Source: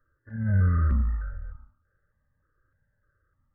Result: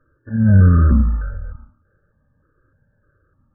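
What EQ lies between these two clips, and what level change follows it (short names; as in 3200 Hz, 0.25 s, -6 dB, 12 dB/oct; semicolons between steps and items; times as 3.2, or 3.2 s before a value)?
brick-wall FIR low-pass 1800 Hz; bell 270 Hz +10.5 dB 2.8 oct; +6.5 dB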